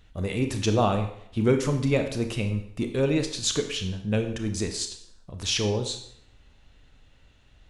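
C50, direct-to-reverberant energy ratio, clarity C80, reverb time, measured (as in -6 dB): 8.5 dB, 6.0 dB, 11.5 dB, 0.70 s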